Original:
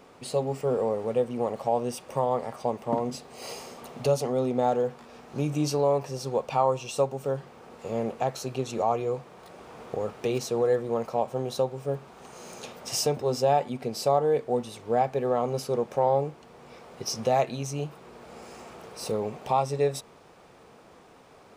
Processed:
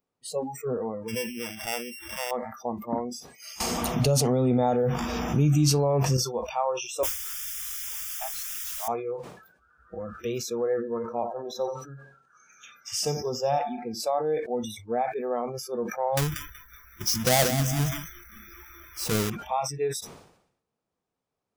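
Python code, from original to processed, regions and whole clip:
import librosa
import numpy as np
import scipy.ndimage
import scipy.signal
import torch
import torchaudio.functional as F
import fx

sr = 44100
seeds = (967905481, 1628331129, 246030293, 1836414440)

y = fx.chain(x, sr, fx.sample_sort(block=16),
    fx.comb_fb(f0_hz=110.0, decay_s=0.25, harmonics='all', damping=0.0, mix_pct=50),
    fx.pre_swell(db_per_s=67.0), at=(1.08, 2.31))
y = fx.chain(y, sr, fx.low_shelf(hz=100.0, db=8.5),
    fx.env_flatten(amount_pct=70), at=(3.6, 6.17))
y = fx.chain(y, sr, fx.highpass(hz=980.0, slope=12),
    fx.high_shelf(hz=4800.0, db=-7.5),
    fx.quant_dither(seeds[0], bits=6, dither='triangular'), at=(7.03, 8.88))
y = fx.chain(y, sr, fx.high_shelf(hz=9200.0, db=-9.0),
    fx.echo_feedback(ms=88, feedback_pct=55, wet_db=-10.5), at=(10.75, 14.0))
y = fx.chain(y, sr, fx.halfwave_hold(),
    fx.high_shelf(hz=5200.0, db=3.0),
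    fx.echo_crushed(ms=187, feedback_pct=55, bits=7, wet_db=-9), at=(16.17, 19.3))
y = fx.bass_treble(y, sr, bass_db=6, treble_db=6)
y = fx.noise_reduce_blind(y, sr, reduce_db=30)
y = fx.sustainer(y, sr, db_per_s=78.0)
y = y * librosa.db_to_amplitude(-3.5)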